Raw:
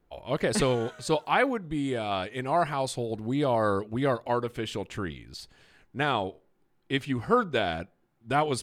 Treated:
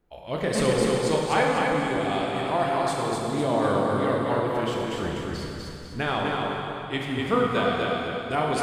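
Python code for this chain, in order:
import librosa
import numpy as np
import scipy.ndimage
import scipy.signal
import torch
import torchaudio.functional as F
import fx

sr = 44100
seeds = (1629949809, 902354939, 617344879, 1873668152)

p1 = fx.low_shelf(x, sr, hz=240.0, db=7.5, at=(5.03, 6.01))
p2 = p1 + fx.echo_feedback(p1, sr, ms=249, feedback_pct=40, wet_db=-3, dry=0)
p3 = fx.rev_plate(p2, sr, seeds[0], rt60_s=2.8, hf_ratio=0.85, predelay_ms=0, drr_db=-1.5)
y = F.gain(torch.from_numpy(p3), -2.0).numpy()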